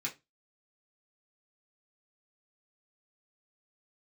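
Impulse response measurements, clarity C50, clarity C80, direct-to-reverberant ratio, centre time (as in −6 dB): 16.5 dB, 25.0 dB, −4.5 dB, 13 ms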